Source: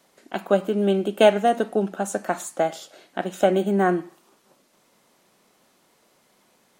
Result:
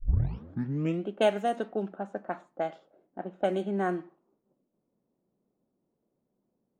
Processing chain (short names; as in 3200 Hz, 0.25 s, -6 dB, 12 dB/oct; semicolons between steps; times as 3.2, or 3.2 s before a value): tape start at the beginning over 1.07 s; low-pass opened by the level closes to 350 Hz, open at -14 dBFS; gain -9 dB